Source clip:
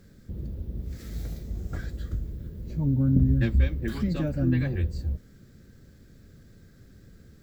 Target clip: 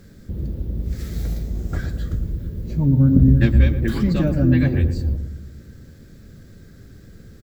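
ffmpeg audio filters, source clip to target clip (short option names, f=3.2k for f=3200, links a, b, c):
-filter_complex "[0:a]asplit=2[a][b];[b]adelay=115,lowpass=f=860:p=1,volume=-7dB,asplit=2[c][d];[d]adelay=115,lowpass=f=860:p=1,volume=0.55,asplit=2[e][f];[f]adelay=115,lowpass=f=860:p=1,volume=0.55,asplit=2[g][h];[h]adelay=115,lowpass=f=860:p=1,volume=0.55,asplit=2[i][j];[j]adelay=115,lowpass=f=860:p=1,volume=0.55,asplit=2[k][l];[l]adelay=115,lowpass=f=860:p=1,volume=0.55,asplit=2[m][n];[n]adelay=115,lowpass=f=860:p=1,volume=0.55[o];[a][c][e][g][i][k][m][o]amix=inputs=8:normalize=0,volume=7.5dB"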